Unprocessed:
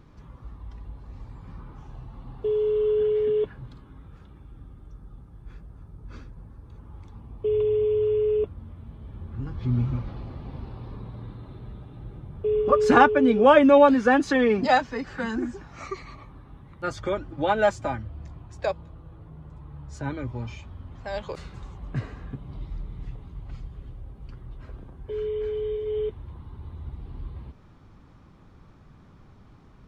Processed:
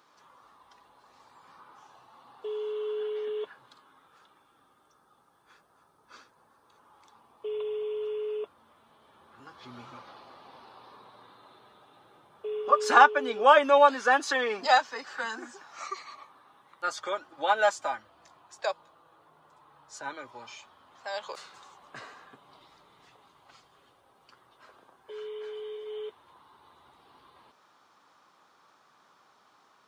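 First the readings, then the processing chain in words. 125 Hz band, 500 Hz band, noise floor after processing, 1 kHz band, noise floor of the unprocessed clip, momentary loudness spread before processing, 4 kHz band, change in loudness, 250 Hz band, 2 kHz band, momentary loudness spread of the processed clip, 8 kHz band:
under -30 dB, -7.5 dB, -65 dBFS, 0.0 dB, -51 dBFS, 24 LU, +2.5 dB, -3.5 dB, -18.0 dB, 0.0 dB, 24 LU, n/a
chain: HPF 1000 Hz 12 dB/oct; bell 2200 Hz -7.5 dB 0.96 oct; gain +5 dB

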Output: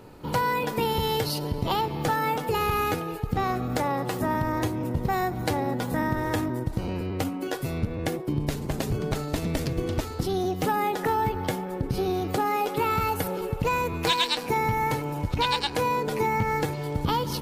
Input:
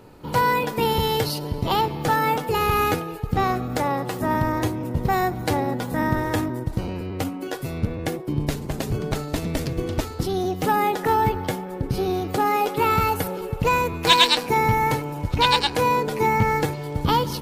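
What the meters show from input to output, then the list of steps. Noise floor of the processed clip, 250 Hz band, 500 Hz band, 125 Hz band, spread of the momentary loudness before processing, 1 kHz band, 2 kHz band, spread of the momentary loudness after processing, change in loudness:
-35 dBFS, -3.0 dB, -3.5 dB, -3.0 dB, 9 LU, -5.0 dB, -5.0 dB, 5 LU, -4.5 dB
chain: compressor 3:1, threshold -23 dBFS, peak gain reduction 9.5 dB

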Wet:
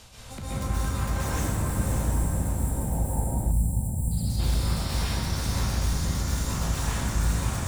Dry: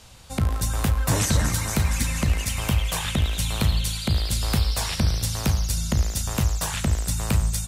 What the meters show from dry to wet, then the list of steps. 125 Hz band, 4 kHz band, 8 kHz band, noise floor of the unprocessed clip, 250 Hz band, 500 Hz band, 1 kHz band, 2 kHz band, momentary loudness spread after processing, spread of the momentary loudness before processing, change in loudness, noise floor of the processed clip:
-3.0 dB, -8.0 dB, -6.0 dB, -33 dBFS, -2.5 dB, -2.5 dB, -2.0 dB, -6.0 dB, 2 LU, 3 LU, -3.5 dB, -37 dBFS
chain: tracing distortion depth 0.037 ms; spectral delete 1.27–4.11, 950–7200 Hz; reverse; upward compressor, threshold -29 dBFS; reverse; limiter -22.5 dBFS, peak gain reduction 11.5 dB; on a send: diffused feedback echo 0.607 s, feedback 44%, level -5 dB; on the sum: plate-style reverb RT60 3.1 s, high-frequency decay 0.35×, pre-delay 0.115 s, DRR -10 dB; spectral gain 3.51–4.4, 270–3800 Hz -10 dB; gain -7.5 dB

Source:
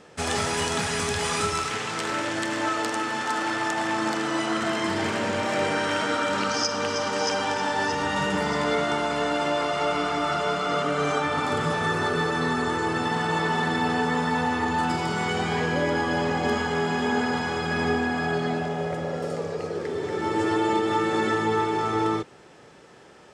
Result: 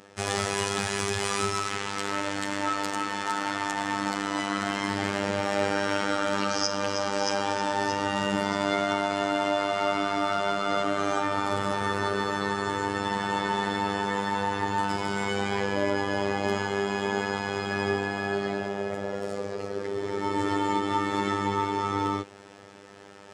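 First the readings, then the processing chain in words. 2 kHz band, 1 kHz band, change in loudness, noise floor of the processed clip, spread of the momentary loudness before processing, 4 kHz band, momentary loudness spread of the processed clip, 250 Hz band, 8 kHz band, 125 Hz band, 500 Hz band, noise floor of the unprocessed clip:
-3.5 dB, -2.0 dB, -2.5 dB, -48 dBFS, 3 LU, -2.5 dB, 4 LU, -3.0 dB, -2.5 dB, -4.0 dB, -2.5 dB, -49 dBFS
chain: reverse; upward compressor, threshold -40 dBFS; reverse; robotiser 99.7 Hz

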